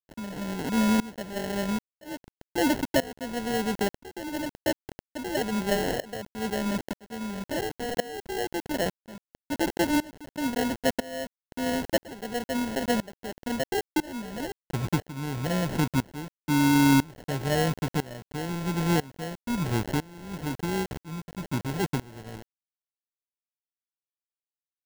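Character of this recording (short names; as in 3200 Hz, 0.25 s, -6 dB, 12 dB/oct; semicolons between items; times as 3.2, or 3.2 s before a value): a quantiser's noise floor 6-bit, dither none; tremolo saw up 1 Hz, depth 95%; aliases and images of a low sample rate 1200 Hz, jitter 0%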